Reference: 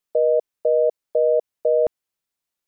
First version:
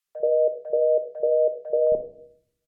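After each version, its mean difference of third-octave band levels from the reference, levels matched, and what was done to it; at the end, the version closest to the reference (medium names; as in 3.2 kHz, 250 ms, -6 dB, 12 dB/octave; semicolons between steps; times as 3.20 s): 3.5 dB: low-pass that closes with the level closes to 580 Hz, closed at -16 dBFS; three bands offset in time highs, lows, mids 50/80 ms, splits 210/910 Hz; simulated room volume 1000 m³, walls furnished, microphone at 1.2 m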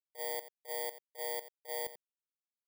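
20.0 dB: bit-reversed sample order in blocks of 32 samples; gate -12 dBFS, range -50 dB; on a send: delay 88 ms -14.5 dB; on the sum: trim +14.5 dB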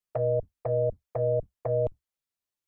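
9.0 dB: octave divider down 2 oct, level +1 dB; dynamic bell 360 Hz, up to -6 dB, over -34 dBFS, Q 1.4; touch-sensitive flanger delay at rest 10.5 ms, full sweep at -16 dBFS; trim -4.5 dB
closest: first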